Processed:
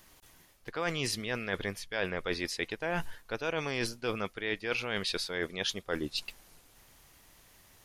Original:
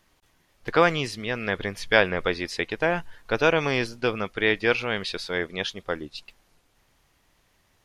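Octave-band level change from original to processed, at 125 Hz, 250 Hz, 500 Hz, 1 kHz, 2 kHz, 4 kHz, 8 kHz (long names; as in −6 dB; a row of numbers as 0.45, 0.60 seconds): −7.5, −8.0, −10.5, −11.5, −9.5, −4.5, +1.5 decibels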